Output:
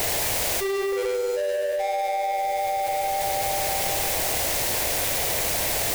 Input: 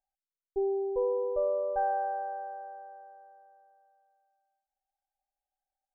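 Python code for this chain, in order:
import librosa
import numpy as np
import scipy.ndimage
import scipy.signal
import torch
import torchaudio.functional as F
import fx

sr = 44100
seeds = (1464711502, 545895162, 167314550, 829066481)

p1 = fx.halfwave_hold(x, sr)
p2 = fx.low_shelf(p1, sr, hz=350.0, db=-10.5)
p3 = fx.notch(p2, sr, hz=730.0, q=12.0)
p4 = fx.comb_fb(p3, sr, f0_hz=260.0, decay_s=0.23, harmonics='all', damping=0.0, mix_pct=50)
p5 = fx.echo_feedback(p4, sr, ms=97, feedback_pct=51, wet_db=-5.5)
p6 = fx.granulator(p5, sr, seeds[0], grain_ms=100.0, per_s=20.0, spray_ms=100.0, spread_st=0)
p7 = fx.quant_dither(p6, sr, seeds[1], bits=6, dither='triangular')
p8 = p6 + F.gain(torch.from_numpy(p7), -11.0).numpy()
p9 = fx.curve_eq(p8, sr, hz=(100.0, 240.0, 640.0, 1300.0, 2000.0, 3000.0), db=(0, -10, 3, -13, -5, -9))
p10 = fx.env_flatten(p9, sr, amount_pct=100)
y = F.gain(torch.from_numpy(p10), 1.5).numpy()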